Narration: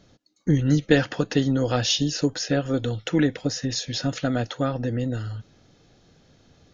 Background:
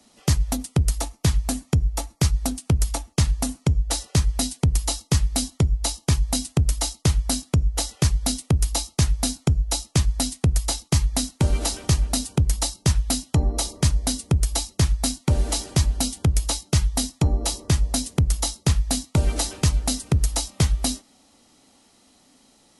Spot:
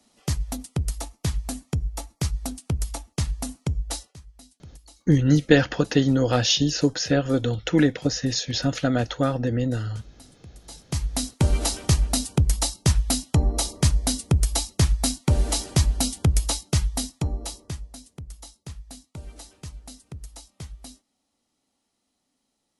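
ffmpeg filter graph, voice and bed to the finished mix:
-filter_complex "[0:a]adelay=4600,volume=1.26[s0];[1:a]volume=10,afade=t=out:st=3.95:d=0.2:silence=0.1,afade=t=in:st=10.64:d=0.79:silence=0.0501187,afade=t=out:st=16.38:d=1.52:silence=0.112202[s1];[s0][s1]amix=inputs=2:normalize=0"

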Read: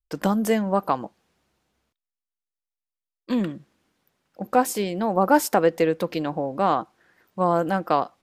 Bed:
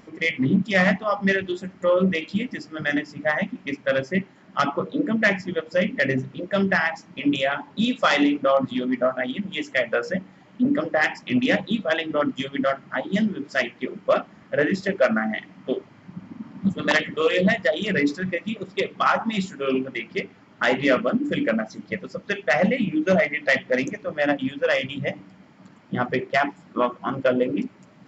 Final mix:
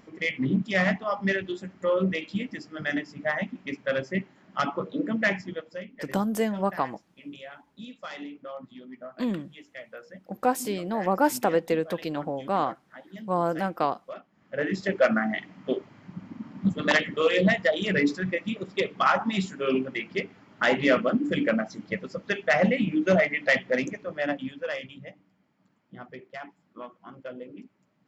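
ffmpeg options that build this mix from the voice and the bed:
-filter_complex "[0:a]adelay=5900,volume=0.596[s0];[1:a]volume=4.47,afade=t=out:st=5.36:d=0.49:silence=0.177828,afade=t=in:st=14.32:d=0.63:silence=0.125893,afade=t=out:st=23.47:d=1.68:silence=0.141254[s1];[s0][s1]amix=inputs=2:normalize=0"

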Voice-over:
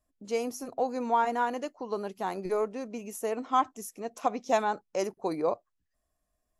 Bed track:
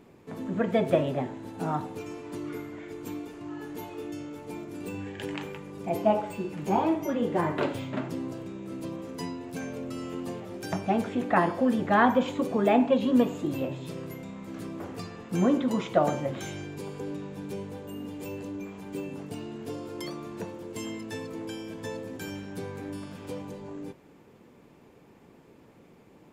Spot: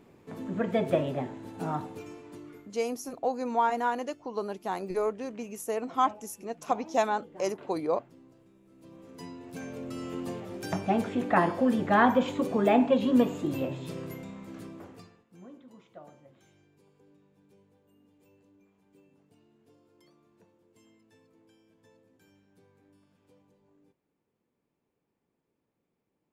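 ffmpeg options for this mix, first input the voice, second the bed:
-filter_complex "[0:a]adelay=2450,volume=1[s0];[1:a]volume=8.41,afade=t=out:st=1.78:d=0.99:silence=0.112202,afade=t=in:st=8.75:d=1.42:silence=0.0891251,afade=t=out:st=14.11:d=1.14:silence=0.0530884[s1];[s0][s1]amix=inputs=2:normalize=0"

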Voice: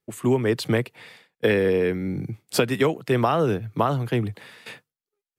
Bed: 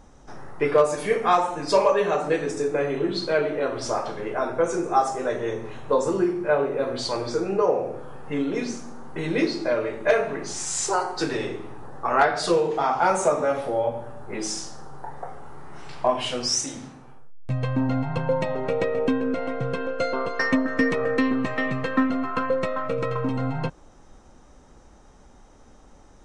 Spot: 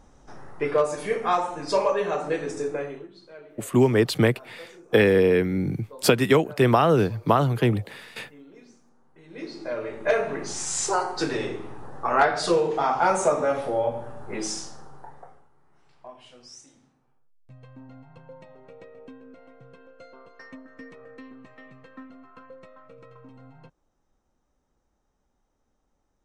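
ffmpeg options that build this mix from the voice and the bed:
-filter_complex "[0:a]adelay=3500,volume=1.33[s0];[1:a]volume=8.91,afade=t=out:st=2.68:d=0.4:silence=0.105925,afade=t=in:st=9.28:d=1.05:silence=0.0749894,afade=t=out:st=14.4:d=1.09:silence=0.0794328[s1];[s0][s1]amix=inputs=2:normalize=0"

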